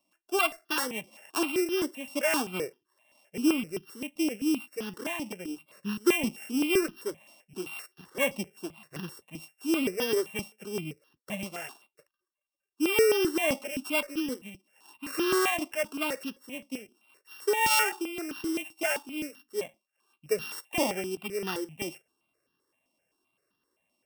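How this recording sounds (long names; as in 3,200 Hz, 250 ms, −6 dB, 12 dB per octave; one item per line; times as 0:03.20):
a buzz of ramps at a fixed pitch in blocks of 16 samples
notches that jump at a steady rate 7.7 Hz 430–2,200 Hz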